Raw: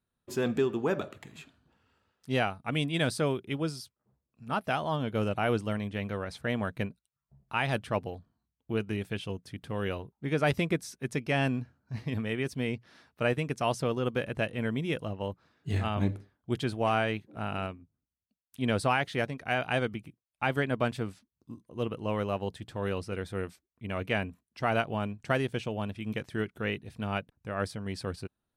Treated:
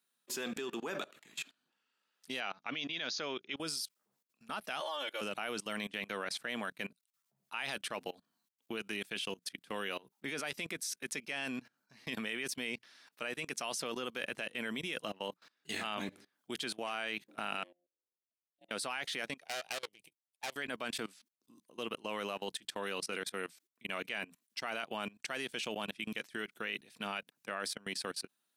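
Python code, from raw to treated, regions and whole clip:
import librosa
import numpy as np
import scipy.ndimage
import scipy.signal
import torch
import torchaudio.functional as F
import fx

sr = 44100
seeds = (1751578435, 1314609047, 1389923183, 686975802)

y = fx.chain(x, sr, fx.brickwall_lowpass(high_hz=6900.0),
    fx.low_shelf(hz=190.0, db=-5.5), at=(2.4, 3.57))
y = fx.chain(y, sr, fx.steep_highpass(hz=380.0, slope=36),
    fx.comb(ms=3.5, depth=0.91),
    fx.quant_float(bits=8), at=(4.8, 5.21))
y = fx.chain(y, sr, fx.tone_stack(knobs='10-0-1'),
    fx.auto_swell(attack_ms=205.0),
    fx.ring_mod(carrier_hz=440.0), at=(17.63, 18.71))
y = fx.chain(y, sr, fx.fixed_phaser(hz=560.0, stages=4),
    fx.tube_stage(drive_db=38.0, bias=0.8), at=(19.4, 20.56))
y = scipy.signal.sosfilt(scipy.signal.butter(4, 190.0, 'highpass', fs=sr, output='sos'), y)
y = fx.tilt_shelf(y, sr, db=-8.5, hz=1300.0)
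y = fx.level_steps(y, sr, step_db=22)
y = y * 10.0 ** (5.5 / 20.0)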